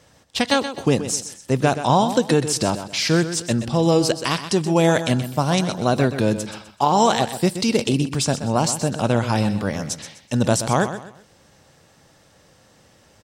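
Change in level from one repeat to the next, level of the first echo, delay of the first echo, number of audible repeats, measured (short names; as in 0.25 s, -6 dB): -10.0 dB, -11.0 dB, 0.126 s, 3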